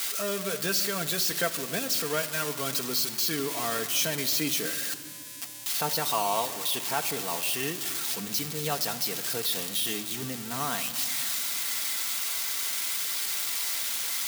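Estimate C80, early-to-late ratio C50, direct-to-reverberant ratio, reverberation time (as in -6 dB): 14.0 dB, 13.0 dB, 4.5 dB, 2.6 s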